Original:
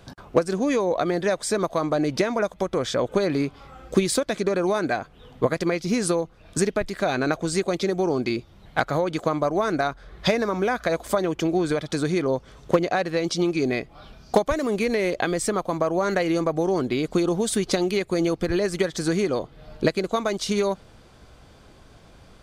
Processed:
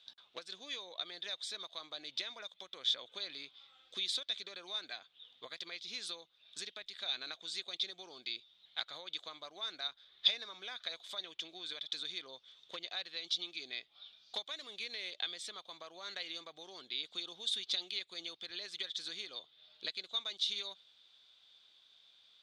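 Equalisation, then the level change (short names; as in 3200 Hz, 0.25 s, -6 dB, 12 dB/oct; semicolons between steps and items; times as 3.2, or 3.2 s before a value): band-pass 3600 Hz, Q 8.7; +4.5 dB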